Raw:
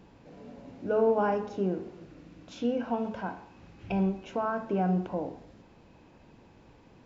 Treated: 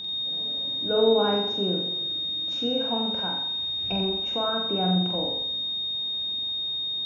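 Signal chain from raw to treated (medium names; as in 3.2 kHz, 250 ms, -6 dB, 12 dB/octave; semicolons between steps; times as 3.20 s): whistle 3.7 kHz -33 dBFS; flutter echo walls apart 7.6 m, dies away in 0.61 s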